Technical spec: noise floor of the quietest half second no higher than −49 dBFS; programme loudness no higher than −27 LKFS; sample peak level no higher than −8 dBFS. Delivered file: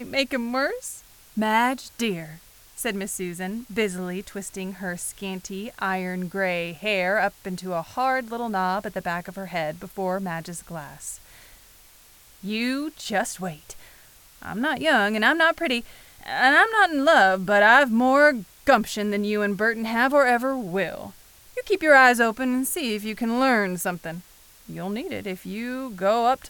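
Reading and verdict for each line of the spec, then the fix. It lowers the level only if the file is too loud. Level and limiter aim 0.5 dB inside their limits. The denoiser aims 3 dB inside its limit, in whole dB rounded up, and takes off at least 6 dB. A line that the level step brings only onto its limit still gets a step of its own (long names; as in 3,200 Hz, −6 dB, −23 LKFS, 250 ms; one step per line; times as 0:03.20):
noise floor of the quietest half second −52 dBFS: in spec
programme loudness −23.0 LKFS: out of spec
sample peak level −5.0 dBFS: out of spec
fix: level −4.5 dB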